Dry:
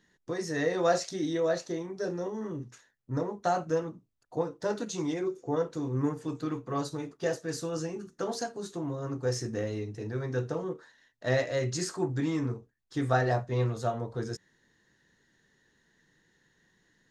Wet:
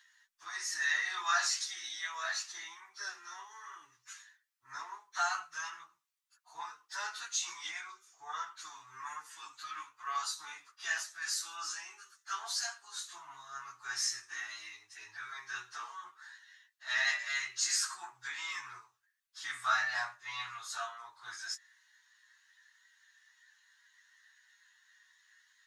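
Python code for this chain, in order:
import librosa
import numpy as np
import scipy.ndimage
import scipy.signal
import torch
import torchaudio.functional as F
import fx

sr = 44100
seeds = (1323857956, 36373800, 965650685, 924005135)

y = scipy.signal.sosfilt(scipy.signal.cheby2(4, 40, 560.0, 'highpass', fs=sr, output='sos'), x)
y = fx.stretch_vocoder_free(y, sr, factor=1.5)
y = F.gain(torch.from_numpy(y), 7.5).numpy()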